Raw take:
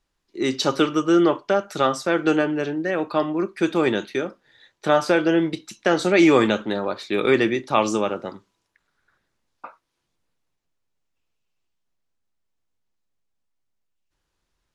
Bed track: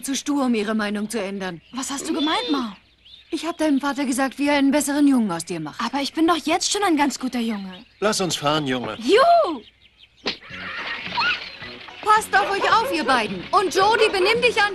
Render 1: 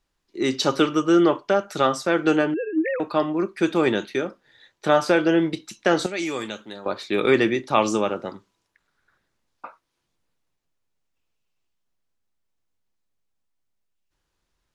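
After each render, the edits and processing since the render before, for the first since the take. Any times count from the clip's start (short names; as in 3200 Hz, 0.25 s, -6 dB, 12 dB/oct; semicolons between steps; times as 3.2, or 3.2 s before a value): 2.54–3 sine-wave speech; 6.06–6.86 pre-emphasis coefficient 0.8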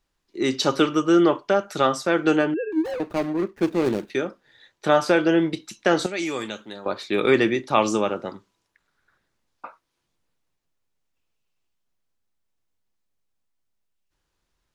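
2.72–4.1 median filter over 41 samples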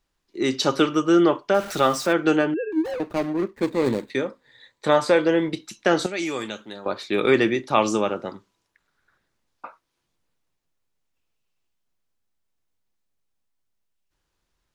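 1.54–2.13 zero-crossing step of -32 dBFS; 3.54–5.49 ripple EQ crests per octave 1, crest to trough 7 dB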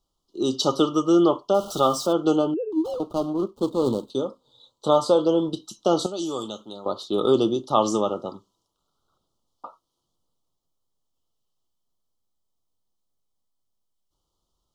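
Chebyshev band-stop 1300–3000 Hz, order 4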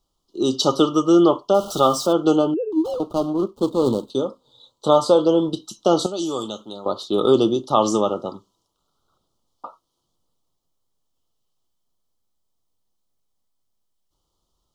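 gain +3.5 dB; limiter -3 dBFS, peak gain reduction 1.5 dB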